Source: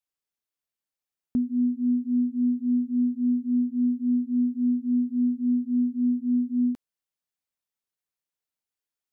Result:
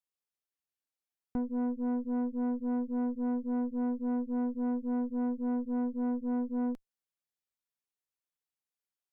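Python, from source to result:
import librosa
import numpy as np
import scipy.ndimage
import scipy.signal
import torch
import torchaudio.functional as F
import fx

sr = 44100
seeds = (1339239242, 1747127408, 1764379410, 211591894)

y = fx.tube_stage(x, sr, drive_db=27.0, bias=0.75)
y = y * librosa.db_to_amplitude(-1.5)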